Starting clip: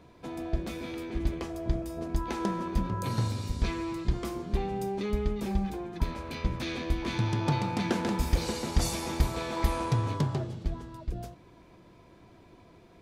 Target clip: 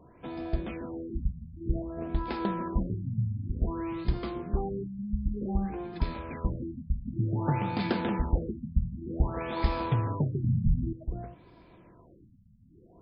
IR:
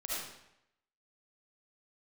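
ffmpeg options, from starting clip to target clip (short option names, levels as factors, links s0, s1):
-filter_complex "[0:a]asettb=1/sr,asplit=3[s0][s1][s2];[s0]atrim=end=10.444[s3];[s1]atrim=start=10.44:end=10.93,asetpts=PTS-STARTPTS,afade=t=in:d=0.004:c=qsin,afade=t=out:st=0.486:d=0.004:c=qsin,aeval=exprs='0.141*sin(PI/2*3.16*val(0)/0.141)':c=same[s4];[s2]atrim=start=10.926[s5];[s3][s4]acrossfade=d=0.004:c1=hsin:c2=qsin[s6];[s6][s5]acrossfade=d=0.004:c1=qsin:c2=hsin,afftfilt=real='re*lt(b*sr/1024,220*pow(5400/220,0.5+0.5*sin(2*PI*0.54*pts/sr)))':imag='im*lt(b*sr/1024,220*pow(5400/220,0.5+0.5*sin(2*PI*0.54*pts/sr)))':win_size=1024:overlap=0.75"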